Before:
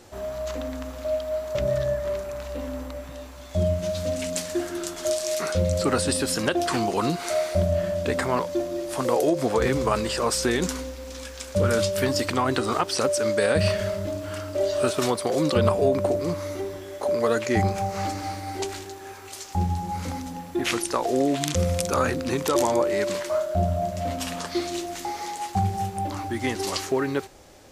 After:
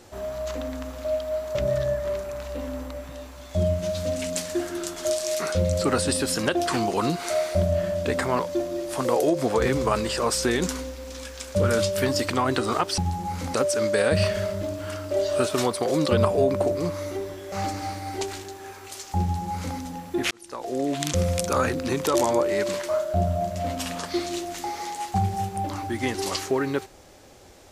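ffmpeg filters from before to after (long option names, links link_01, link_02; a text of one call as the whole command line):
ffmpeg -i in.wav -filter_complex "[0:a]asplit=5[link_01][link_02][link_03][link_04][link_05];[link_01]atrim=end=12.982[link_06];[link_02]atrim=start=19.618:end=20.182[link_07];[link_03]atrim=start=12.978:end=16.962[link_08];[link_04]atrim=start=17.928:end=20.72,asetpts=PTS-STARTPTS,afade=type=out:start_time=2.788:duration=0.004:curve=hsin[link_09];[link_05]atrim=start=20.72,asetpts=PTS-STARTPTS,afade=type=in:duration=0.82[link_10];[link_06][link_07]acrossfade=duration=0.004:curve1=hsin:curve2=hsin[link_11];[link_11][link_08]acrossfade=duration=0.004:curve1=hsin:curve2=hsin[link_12];[link_09][link_10]concat=n=2:v=0:a=1[link_13];[link_12][link_13]acrossfade=duration=0.004:curve1=hsin:curve2=hsin" out.wav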